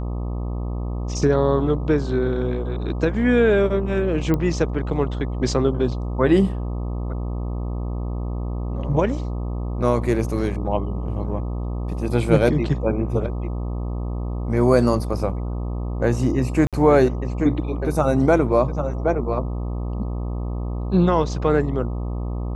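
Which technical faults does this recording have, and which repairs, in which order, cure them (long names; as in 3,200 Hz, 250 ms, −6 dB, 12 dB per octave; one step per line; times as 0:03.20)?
mains buzz 60 Hz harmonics 21 −26 dBFS
0:04.34: click −11 dBFS
0:16.67–0:16.73: drop-out 57 ms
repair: click removal
hum removal 60 Hz, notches 21
repair the gap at 0:16.67, 57 ms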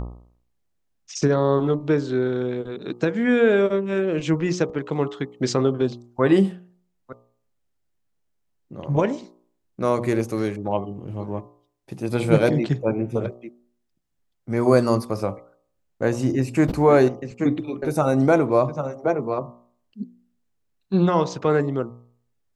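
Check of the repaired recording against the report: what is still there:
none of them is left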